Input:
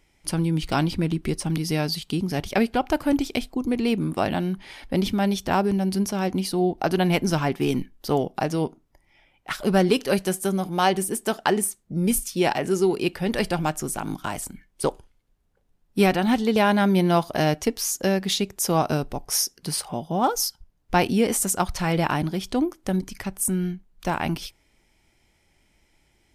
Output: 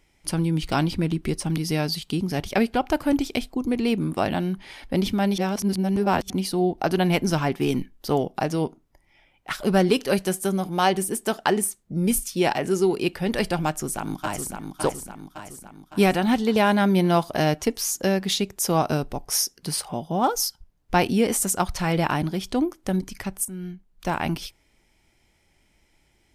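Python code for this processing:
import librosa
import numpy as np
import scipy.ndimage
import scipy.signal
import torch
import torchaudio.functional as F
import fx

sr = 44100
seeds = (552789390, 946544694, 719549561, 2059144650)

y = fx.echo_throw(x, sr, start_s=13.67, length_s=1.0, ms=560, feedback_pct=55, wet_db=-5.5)
y = fx.edit(y, sr, fx.reverse_span(start_s=5.38, length_s=0.92),
    fx.fade_in_from(start_s=23.45, length_s=0.69, floor_db=-14.5), tone=tone)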